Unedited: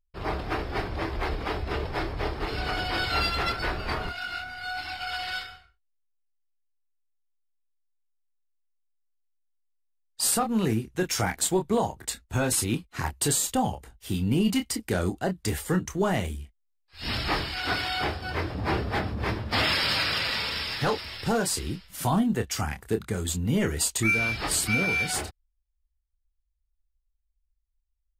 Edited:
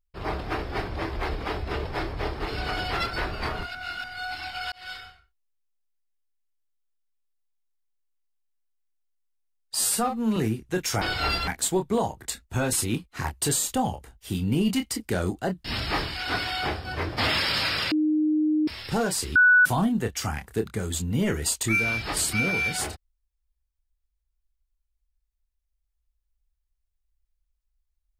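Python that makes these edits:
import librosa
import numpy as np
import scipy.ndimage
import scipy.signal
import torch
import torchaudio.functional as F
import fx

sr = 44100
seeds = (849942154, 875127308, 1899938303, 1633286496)

y = fx.edit(x, sr, fx.move(start_s=2.93, length_s=0.46, to_s=11.27),
    fx.reverse_span(start_s=4.21, length_s=0.29),
    fx.fade_in_span(start_s=5.18, length_s=0.32),
    fx.stretch_span(start_s=10.21, length_s=0.41, factor=1.5),
    fx.cut(start_s=15.44, length_s=1.58),
    fx.cut(start_s=18.54, length_s=0.97),
    fx.bleep(start_s=20.26, length_s=0.76, hz=307.0, db=-19.5),
    fx.bleep(start_s=21.7, length_s=0.3, hz=1480.0, db=-13.0), tone=tone)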